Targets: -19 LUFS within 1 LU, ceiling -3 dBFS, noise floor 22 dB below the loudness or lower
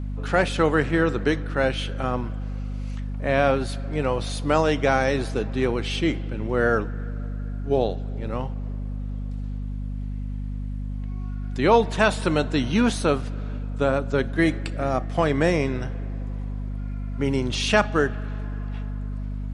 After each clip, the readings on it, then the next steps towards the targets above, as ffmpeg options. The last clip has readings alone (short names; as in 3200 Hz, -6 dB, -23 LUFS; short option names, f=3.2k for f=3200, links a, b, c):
hum 50 Hz; harmonics up to 250 Hz; hum level -27 dBFS; loudness -25.0 LUFS; peak -4.0 dBFS; loudness target -19.0 LUFS
-> -af "bandreject=f=50:t=h:w=6,bandreject=f=100:t=h:w=6,bandreject=f=150:t=h:w=6,bandreject=f=200:t=h:w=6,bandreject=f=250:t=h:w=6"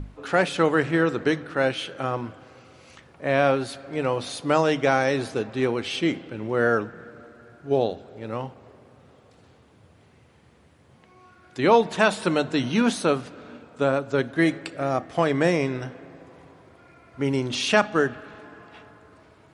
hum none; loudness -24.0 LUFS; peak -4.0 dBFS; loudness target -19.0 LUFS
-> -af "volume=5dB,alimiter=limit=-3dB:level=0:latency=1"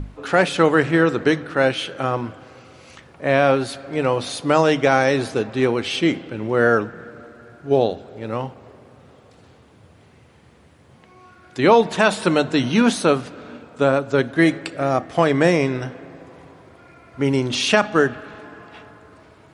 loudness -19.5 LUFS; peak -3.0 dBFS; noise floor -51 dBFS